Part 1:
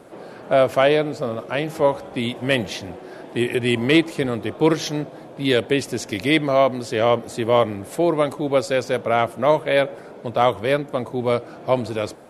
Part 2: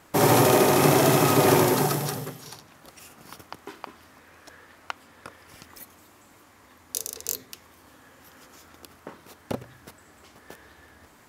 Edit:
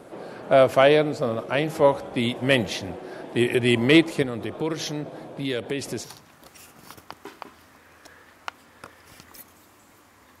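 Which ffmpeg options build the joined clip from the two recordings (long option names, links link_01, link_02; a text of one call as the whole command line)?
ffmpeg -i cue0.wav -i cue1.wav -filter_complex "[0:a]asettb=1/sr,asplit=3[link_01][link_02][link_03];[link_01]atrim=end=4.224[link_04];[link_02]atrim=start=4.22:end=6.08,asetpts=PTS-STARTPTS,afade=type=in:duration=0.004:curve=qsin,afade=type=out:start_time=1.856:duration=0.004:curve=qsin,acompressor=threshold=-27dB:ratio=2.5:attack=3.2:release=140:knee=1:detection=peak[link_05];[link_03]atrim=start=6.076[link_06];[link_04][link_05]acrossfade=duration=0.004:curve1=hsin:curve2=qsin[link_07];[link_07][link_06]acrossfade=duration=0.004:curve1=qsin:curve2=hsin,apad=whole_dur=10.4,atrim=end=10.4,atrim=end=6.08,asetpts=PTS-STARTPTS[link_08];[1:a]atrim=start=2.4:end=6.82,asetpts=PTS-STARTPTS[link_09];[link_08][link_09]acrossfade=duration=0.1:curve1=tri:curve2=tri" out.wav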